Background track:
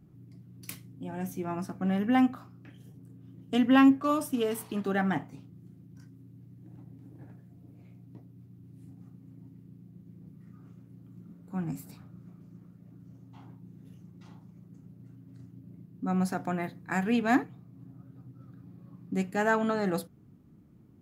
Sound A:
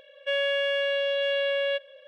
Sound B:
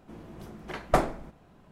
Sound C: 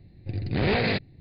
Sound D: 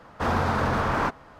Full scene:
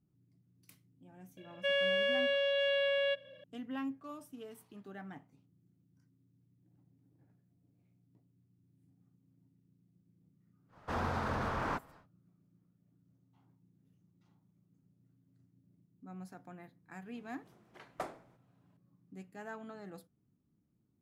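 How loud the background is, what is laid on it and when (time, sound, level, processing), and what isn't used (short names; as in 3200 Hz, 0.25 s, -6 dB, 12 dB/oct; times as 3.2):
background track -19.5 dB
1.37 add A -5 dB
10.68 add D -11 dB, fades 0.10 s
17.06 add B -16 dB + HPF 370 Hz 6 dB/oct
not used: C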